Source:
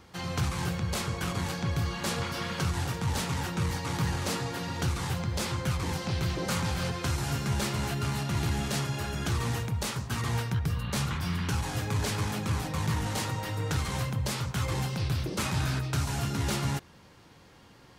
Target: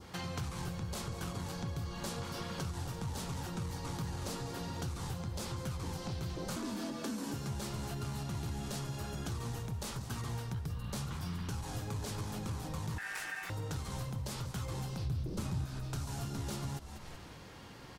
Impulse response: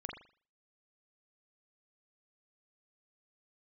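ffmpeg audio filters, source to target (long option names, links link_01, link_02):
-filter_complex "[0:a]asettb=1/sr,asplit=3[link_01][link_02][link_03];[link_01]atrim=end=6.564[link_04];[link_02]atrim=start=6.56:end=7.34,asetpts=PTS-STARTPTS,afade=type=in:duration=0.004:curve=qsin,afade=type=out:start_time=0.776:duration=0.004:curve=qsin,afreqshift=140[link_05];[link_03]atrim=start=7.336[link_06];[link_04][link_05]acrossfade=duration=0.004:curve1=hsin:curve2=qsin[link_07];[link_07][link_06]acrossfade=duration=0.004:curve1=qsin:curve2=hsin,asplit=3[link_08][link_09][link_10];[link_08]afade=type=out:start_time=15.05:duration=0.02[link_11];[link_09]lowshelf=frequency=320:gain=11,afade=type=in:start_time=15.05:duration=0.02,afade=type=out:start_time=15.64:duration=0.02[link_12];[link_10]afade=type=in:start_time=15.64:duration=0.02[link_13];[link_11][link_12][link_13]amix=inputs=3:normalize=0,asplit=2[link_14][link_15];[link_15]asplit=4[link_16][link_17][link_18][link_19];[link_16]adelay=190,afreqshift=-66,volume=-14.5dB[link_20];[link_17]adelay=380,afreqshift=-132,volume=-22.9dB[link_21];[link_18]adelay=570,afreqshift=-198,volume=-31.3dB[link_22];[link_19]adelay=760,afreqshift=-264,volume=-39.7dB[link_23];[link_20][link_21][link_22][link_23]amix=inputs=4:normalize=0[link_24];[link_14][link_24]amix=inputs=2:normalize=0,adynamicequalizer=threshold=0.00251:dfrequency=2100:dqfactor=1.1:tfrequency=2100:tqfactor=1.1:attack=5:release=100:ratio=0.375:range=3.5:mode=cutabove:tftype=bell,asettb=1/sr,asplit=3[link_25][link_26][link_27];[link_25]atrim=end=12.984[link_28];[link_26]atrim=start=12.98:end=13.5,asetpts=PTS-STARTPTS,afade=type=in:duration=0.004:curve=qsin,afade=type=out:start_time=0.516:duration=0.004:curve=qsin,aeval=exprs='val(0)*sin(2*PI*1700*n/s)':channel_layout=same[link_29];[link_27]atrim=start=13.496[link_30];[link_28][link_29]acrossfade=duration=0.004:curve1=hsin:curve2=qsin[link_31];[link_31][link_30]acrossfade=duration=0.004:curve1=qsin:curve2=hsin,acompressor=threshold=-44dB:ratio=3,volume=3.5dB"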